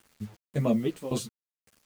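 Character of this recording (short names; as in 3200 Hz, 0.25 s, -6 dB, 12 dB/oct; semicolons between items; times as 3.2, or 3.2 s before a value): tremolo saw down 1.8 Hz, depth 90%; a quantiser's noise floor 10-bit, dither none; a shimmering, thickened sound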